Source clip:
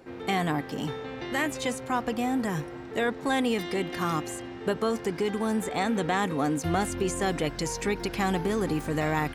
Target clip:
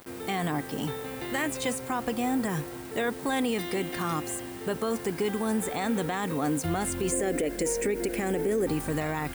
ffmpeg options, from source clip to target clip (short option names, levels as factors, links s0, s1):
-filter_complex "[0:a]asettb=1/sr,asplit=3[s0][s1][s2];[s0]atrim=end=7.124[s3];[s1]atrim=start=7.12:end=8.67,asetpts=PTS-STARTPTS,afade=t=in:d=0.004:c=qsin,afade=t=out:st=1.546:d=0.004:c=qsin,equalizer=f=125:t=o:w=1:g=-12,equalizer=f=250:t=o:w=1:g=6,equalizer=f=500:t=o:w=1:g=11,equalizer=f=1000:t=o:w=1:g=-11,equalizer=f=2000:t=o:w=1:g=6,equalizer=f=4000:t=o:w=1:g=-10,equalizer=f=8000:t=o:w=1:g=5[s4];[s2]atrim=start=8.666[s5];[s3][s4]acrossfade=d=0.004:c1=hsin:c2=qsin[s6];[s6][s5]acrossfade=d=0.004:c1=qsin:c2=hsin,acrusher=bits=7:mix=0:aa=0.000001,alimiter=limit=0.106:level=0:latency=1:release=40,aexciter=amount=1.6:drive=7:freq=8200"